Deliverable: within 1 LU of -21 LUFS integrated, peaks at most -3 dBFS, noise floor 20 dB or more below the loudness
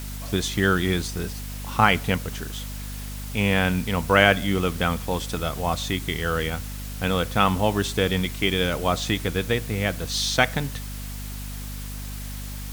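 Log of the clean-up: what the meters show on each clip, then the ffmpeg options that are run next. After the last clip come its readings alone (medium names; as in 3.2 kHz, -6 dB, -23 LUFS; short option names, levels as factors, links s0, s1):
hum 50 Hz; highest harmonic 250 Hz; hum level -31 dBFS; noise floor -34 dBFS; noise floor target -44 dBFS; loudness -24.0 LUFS; peak level -2.0 dBFS; loudness target -21.0 LUFS
-> -af "bandreject=f=50:t=h:w=4,bandreject=f=100:t=h:w=4,bandreject=f=150:t=h:w=4,bandreject=f=200:t=h:w=4,bandreject=f=250:t=h:w=4"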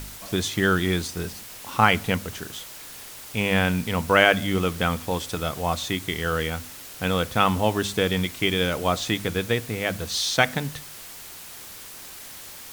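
hum not found; noise floor -41 dBFS; noise floor target -44 dBFS
-> -af "afftdn=nr=6:nf=-41"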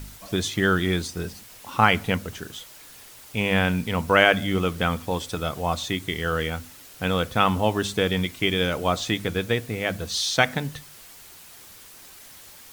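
noise floor -47 dBFS; loudness -24.0 LUFS; peak level -2.0 dBFS; loudness target -21.0 LUFS
-> -af "volume=1.41,alimiter=limit=0.708:level=0:latency=1"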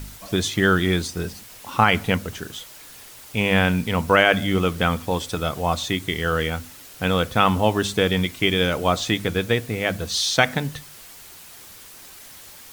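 loudness -21.5 LUFS; peak level -3.0 dBFS; noise floor -44 dBFS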